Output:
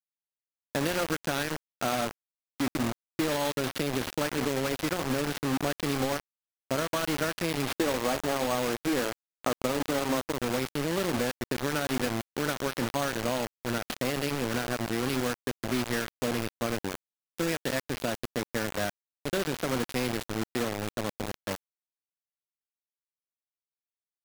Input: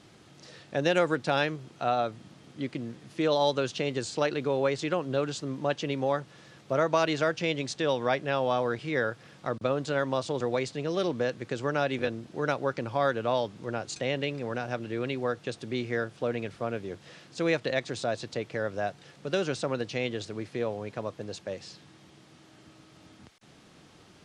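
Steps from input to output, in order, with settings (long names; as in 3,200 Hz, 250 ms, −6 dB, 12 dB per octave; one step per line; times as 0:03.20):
noise gate −41 dBFS, range −9 dB
gain on a spectral selection 0:07.78–0:10.31, 250–1,300 Hz +10 dB
hum removal 90.56 Hz, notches 26
bad sample-rate conversion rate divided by 6×, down none, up hold
graphic EQ with 15 bands 100 Hz +4 dB, 250 Hz +9 dB, 1,600 Hz +5 dB
downward compressor 12 to 1, threshold −25 dBFS, peak gain reduction 14.5 dB
bit reduction 5 bits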